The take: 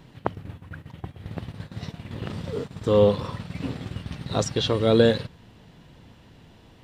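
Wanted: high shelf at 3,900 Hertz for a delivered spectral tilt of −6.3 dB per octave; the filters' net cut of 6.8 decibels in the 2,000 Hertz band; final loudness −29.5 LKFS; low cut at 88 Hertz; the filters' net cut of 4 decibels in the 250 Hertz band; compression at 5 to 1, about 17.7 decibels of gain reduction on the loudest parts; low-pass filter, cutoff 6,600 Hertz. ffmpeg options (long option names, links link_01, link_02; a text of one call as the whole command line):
ffmpeg -i in.wav -af "highpass=88,lowpass=6600,equalizer=frequency=250:width_type=o:gain=-5,equalizer=frequency=2000:width_type=o:gain=-8,highshelf=frequency=3900:gain=-5.5,acompressor=threshold=-36dB:ratio=5,volume=11.5dB" out.wav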